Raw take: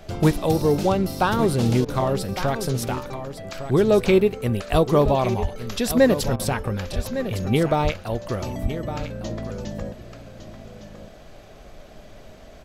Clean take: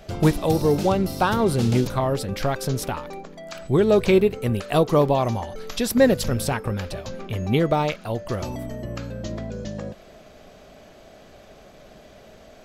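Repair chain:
high-pass at the plosives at 0:04.71/0:05.04/0:05.41/0:06.95/0:07.83/0:08.62
repair the gap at 0:01.85/0:06.36, 33 ms
noise reduction from a noise print 6 dB
echo removal 1,158 ms −11 dB

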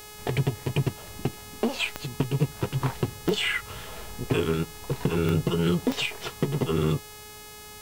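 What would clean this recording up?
click removal
hum removal 422.3 Hz, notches 37

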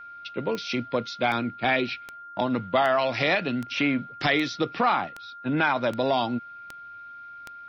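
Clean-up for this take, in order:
click removal
notch filter 1,400 Hz, Q 30

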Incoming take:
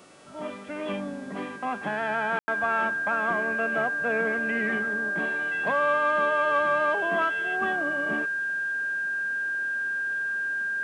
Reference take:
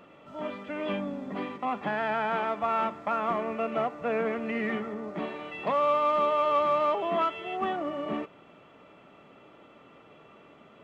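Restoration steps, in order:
hum removal 372.2 Hz, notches 28
notch filter 1,600 Hz, Q 30
ambience match 0:02.39–0:02.48

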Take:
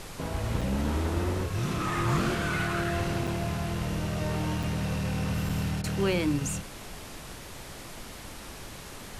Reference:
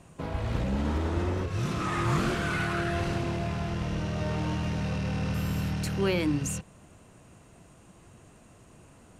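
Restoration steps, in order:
repair the gap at 0:00.61/0:03.27/0:04.63/0:05.49, 4.5 ms
repair the gap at 0:05.82, 18 ms
noise reduction from a noise print 12 dB

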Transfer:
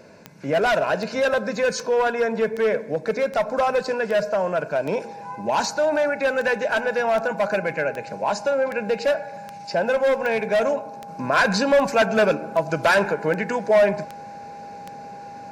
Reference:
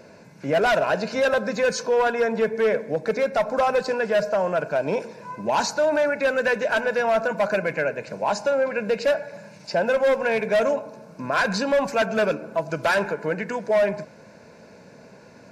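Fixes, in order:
click removal
notch filter 810 Hz, Q 30
level 0 dB, from 0:11.08 −3.5 dB

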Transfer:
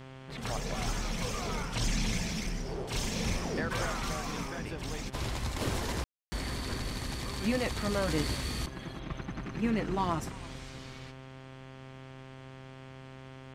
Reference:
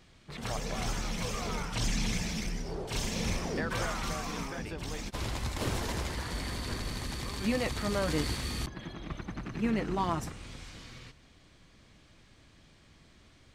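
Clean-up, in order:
hum removal 131.8 Hz, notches 26
ambience match 0:06.04–0:06.32
echo removal 334 ms −20.5 dB

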